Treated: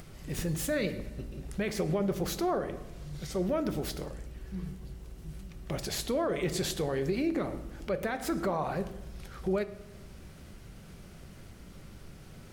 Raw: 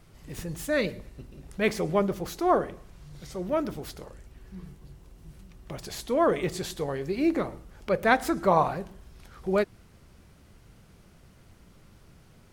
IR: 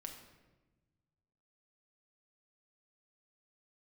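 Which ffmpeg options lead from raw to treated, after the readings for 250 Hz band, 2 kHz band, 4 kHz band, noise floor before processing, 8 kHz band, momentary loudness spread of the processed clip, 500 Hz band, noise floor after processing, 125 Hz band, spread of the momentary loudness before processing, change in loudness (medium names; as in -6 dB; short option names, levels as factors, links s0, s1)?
-2.5 dB, -7.5 dB, +0.5 dB, -56 dBFS, +2.5 dB, 20 LU, -5.0 dB, -50 dBFS, +1.0 dB, 21 LU, -5.5 dB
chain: -filter_complex "[0:a]equalizer=f=990:t=o:w=0.56:g=-3.5,acompressor=threshold=0.0355:ratio=4,alimiter=level_in=1.26:limit=0.0631:level=0:latency=1:release=24,volume=0.794,acompressor=mode=upward:threshold=0.00447:ratio=2.5,asplit=2[s0][s1];[1:a]atrim=start_sample=2205[s2];[s1][s2]afir=irnorm=-1:irlink=0,volume=0.944[s3];[s0][s3]amix=inputs=2:normalize=0"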